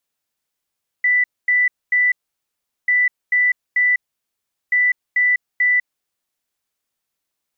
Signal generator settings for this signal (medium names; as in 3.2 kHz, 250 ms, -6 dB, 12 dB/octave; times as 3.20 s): beep pattern sine 1.98 kHz, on 0.20 s, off 0.24 s, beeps 3, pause 0.76 s, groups 3, -12.5 dBFS